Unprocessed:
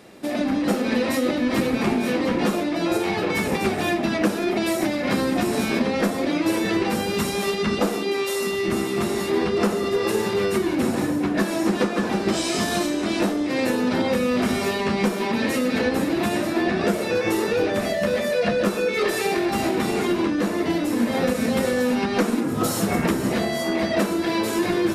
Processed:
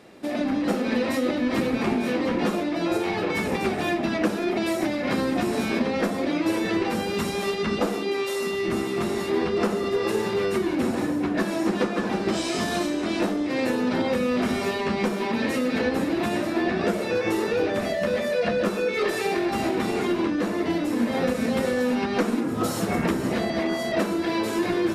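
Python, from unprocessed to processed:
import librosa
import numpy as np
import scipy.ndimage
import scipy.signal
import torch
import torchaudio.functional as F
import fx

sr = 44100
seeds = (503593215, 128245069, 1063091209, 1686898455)

y = fx.edit(x, sr, fx.reverse_span(start_s=23.5, length_s=0.42), tone=tone)
y = fx.high_shelf(y, sr, hz=6600.0, db=-7.0)
y = fx.hum_notches(y, sr, base_hz=50, count=4)
y = F.gain(torch.from_numpy(y), -2.0).numpy()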